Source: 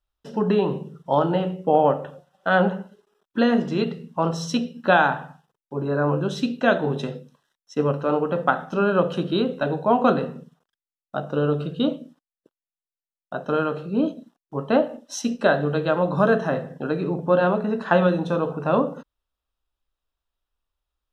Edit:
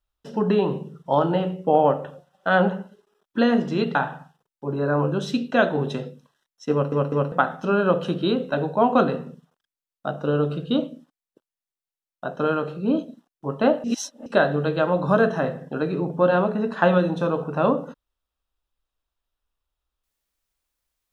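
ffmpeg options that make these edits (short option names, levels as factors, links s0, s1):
-filter_complex "[0:a]asplit=7[s0][s1][s2][s3][s4][s5][s6];[s0]atrim=end=3.952[s7];[s1]atrim=start=5.038:end=8.012[s8];[s2]atrim=start=7.808:end=8.012[s9];[s3]atrim=start=7.808:end=8.012[s10];[s4]atrim=start=8.408:end=14.932[s11];[s5]atrim=start=14.928:end=15.352,asetpts=PTS-STARTPTS,areverse[s12];[s6]atrim=start=15.348[s13];[s7][s8]acrossfade=d=0.004:c1=hsin:c2=hsin[s14];[s14][s9]acrossfade=d=0.004:c1=hsin:c2=hsin[s15];[s15][s10]acrossfade=d=0.004:c1=hsin:c2=hsin[s16];[s16][s11]acrossfade=d=0.004:c1=hsin:c2=hsin[s17];[s17][s12]acrossfade=d=0.004:c1=hsin:c2=hsin[s18];[s18][s13]acrossfade=d=0.004:c1=hsin:c2=hsin"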